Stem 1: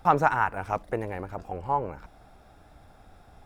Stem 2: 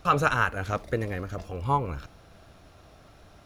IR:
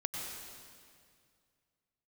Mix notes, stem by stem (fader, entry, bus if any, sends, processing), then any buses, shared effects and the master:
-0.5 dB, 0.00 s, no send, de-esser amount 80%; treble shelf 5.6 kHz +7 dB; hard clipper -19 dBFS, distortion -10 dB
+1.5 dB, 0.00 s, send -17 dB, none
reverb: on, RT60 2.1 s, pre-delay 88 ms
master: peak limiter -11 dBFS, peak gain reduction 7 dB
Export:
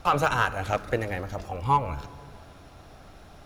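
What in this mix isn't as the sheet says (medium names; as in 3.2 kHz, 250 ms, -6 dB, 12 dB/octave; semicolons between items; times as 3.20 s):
stem 1: missing treble shelf 5.6 kHz +7 dB; stem 2: polarity flipped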